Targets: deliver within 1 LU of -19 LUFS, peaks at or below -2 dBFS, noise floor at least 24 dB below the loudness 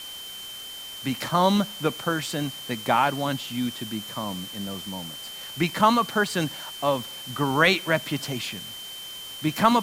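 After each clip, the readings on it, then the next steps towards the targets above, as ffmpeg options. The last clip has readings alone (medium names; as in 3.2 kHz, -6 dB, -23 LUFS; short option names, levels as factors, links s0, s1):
steady tone 3.1 kHz; tone level -37 dBFS; noise floor -39 dBFS; noise floor target -50 dBFS; loudness -26.0 LUFS; peak level -5.0 dBFS; loudness target -19.0 LUFS
-> -af "bandreject=f=3100:w=30"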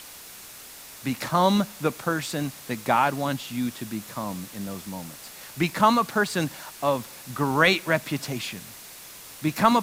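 steady tone not found; noise floor -44 dBFS; noise floor target -50 dBFS
-> -af "afftdn=nr=6:nf=-44"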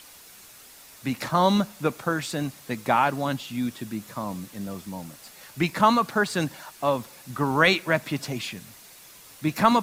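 noise floor -49 dBFS; noise floor target -50 dBFS
-> -af "afftdn=nr=6:nf=-49"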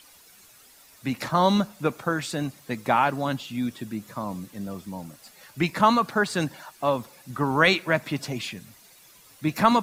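noise floor -54 dBFS; loudness -25.5 LUFS; peak level -5.5 dBFS; loudness target -19.0 LUFS
-> -af "volume=2.11,alimiter=limit=0.794:level=0:latency=1"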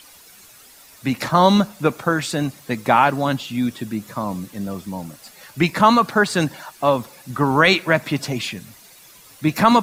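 loudness -19.5 LUFS; peak level -2.0 dBFS; noise floor -47 dBFS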